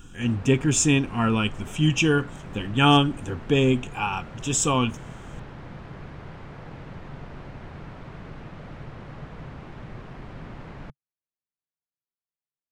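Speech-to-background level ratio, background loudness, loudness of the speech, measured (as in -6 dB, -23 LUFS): 19.0 dB, -41.5 LUFS, -22.5 LUFS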